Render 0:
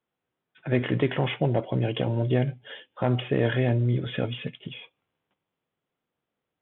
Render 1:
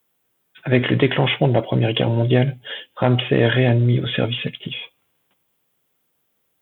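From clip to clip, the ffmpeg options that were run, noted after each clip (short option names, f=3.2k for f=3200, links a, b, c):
-af "aemphasis=mode=production:type=75fm,volume=8dB"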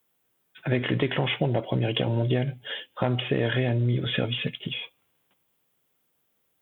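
-af "acompressor=threshold=-19dB:ratio=3,volume=-3dB"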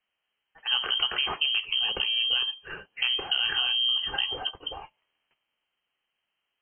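-af "lowpass=f=2.8k:t=q:w=0.5098,lowpass=f=2.8k:t=q:w=0.6013,lowpass=f=2.8k:t=q:w=0.9,lowpass=f=2.8k:t=q:w=2.563,afreqshift=-3300,volume=-2dB"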